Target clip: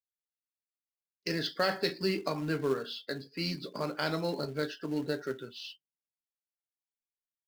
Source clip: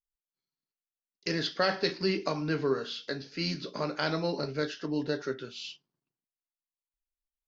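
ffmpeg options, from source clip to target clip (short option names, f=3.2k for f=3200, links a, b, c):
-filter_complex "[0:a]afftdn=nr=24:nf=-47,asplit=2[a][b];[b]acrusher=bits=2:mode=log:mix=0:aa=0.000001,volume=-7.5dB[c];[a][c]amix=inputs=2:normalize=0,volume=-5dB"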